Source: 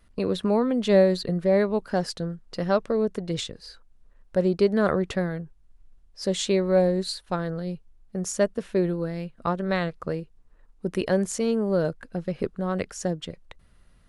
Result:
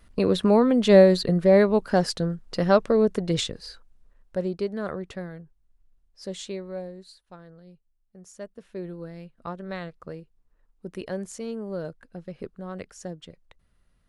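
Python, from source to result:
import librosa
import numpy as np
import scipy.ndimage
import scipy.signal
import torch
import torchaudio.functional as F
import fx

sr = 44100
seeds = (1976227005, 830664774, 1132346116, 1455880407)

y = fx.gain(x, sr, db=fx.line((3.57, 4.0), (4.76, -9.0), (6.37, -9.0), (7.04, -18.5), (8.27, -18.5), (9.03, -9.0)))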